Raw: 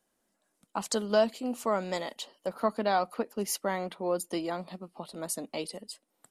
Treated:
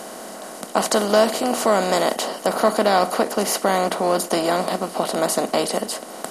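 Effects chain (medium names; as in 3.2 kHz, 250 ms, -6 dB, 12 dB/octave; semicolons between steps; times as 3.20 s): spectral levelling over time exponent 0.4; trim +6 dB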